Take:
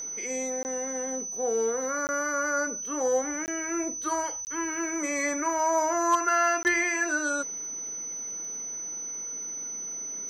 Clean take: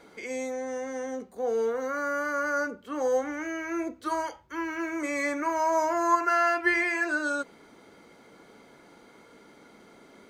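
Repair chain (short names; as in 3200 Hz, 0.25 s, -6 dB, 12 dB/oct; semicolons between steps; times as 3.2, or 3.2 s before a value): clip repair -16 dBFS; de-click; notch 6000 Hz, Q 30; interpolate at 0.63/2.07/3.46/4.45/6.63, 19 ms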